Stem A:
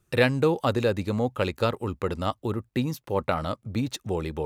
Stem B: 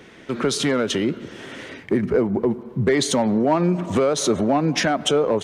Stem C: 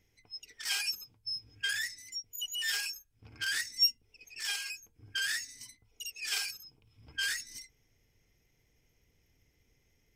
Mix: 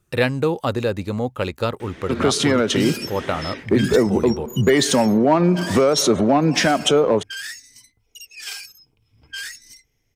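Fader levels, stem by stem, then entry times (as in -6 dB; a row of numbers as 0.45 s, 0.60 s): +2.0 dB, +3.0 dB, +1.5 dB; 0.00 s, 1.80 s, 2.15 s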